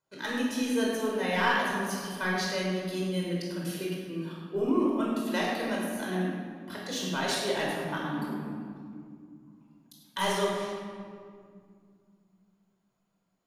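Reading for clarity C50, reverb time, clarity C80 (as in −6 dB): −0.5 dB, 2.3 s, 1.0 dB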